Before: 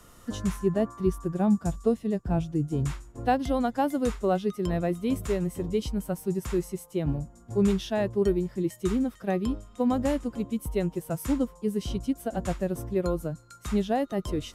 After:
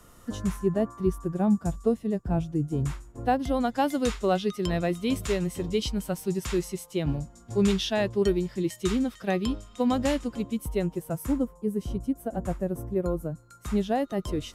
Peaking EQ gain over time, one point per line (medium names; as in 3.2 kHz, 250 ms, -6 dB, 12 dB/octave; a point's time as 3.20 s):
peaking EQ 3.8 kHz 2.2 oct
3.41 s -2.5 dB
3.87 s +9 dB
10.09 s +9 dB
10.91 s -0.5 dB
11.55 s -11.5 dB
13.27 s -11.5 dB
13.89 s +0.5 dB